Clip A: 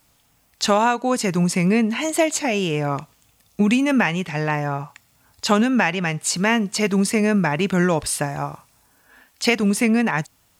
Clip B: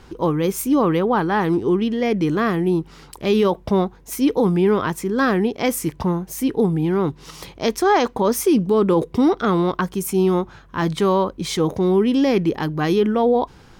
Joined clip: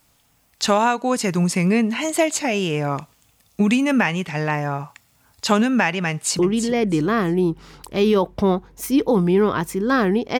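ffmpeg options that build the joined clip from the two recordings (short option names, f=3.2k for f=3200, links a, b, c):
-filter_complex "[0:a]apad=whole_dur=10.39,atrim=end=10.39,atrim=end=6.392[a];[1:a]atrim=start=1.678:end=5.68[b];[a][b]acrossfade=d=0.004:c1=hsin:c2=hsin,asplit=2[c][d];[d]afade=t=in:st=6.09:d=0.01,afade=t=out:st=6.39:d=0.01,aecho=0:1:330|660|990:0.354813|0.0887033|0.0221758[e];[c][e]amix=inputs=2:normalize=0"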